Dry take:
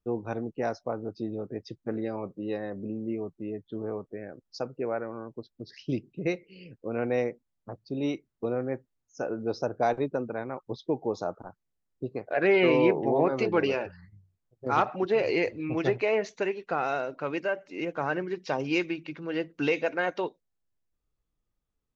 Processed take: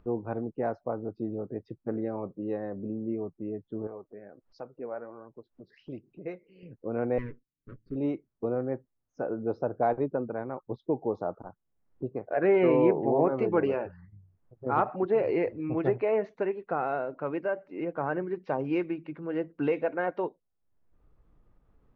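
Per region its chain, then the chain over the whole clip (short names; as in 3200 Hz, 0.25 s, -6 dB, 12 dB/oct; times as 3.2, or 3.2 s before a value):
3.87–6.63 low shelf 360 Hz -8 dB + upward compressor, threshold -44 dBFS + flange 1.4 Hz, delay 0.6 ms, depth 4.9 ms, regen +66%
7.18–7.96 minimum comb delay 7.1 ms + Butterworth band-stop 790 Hz, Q 0.71 + high shelf 4800 Hz -7.5 dB
whole clip: LPF 1300 Hz 12 dB/oct; upward compressor, threshold -44 dBFS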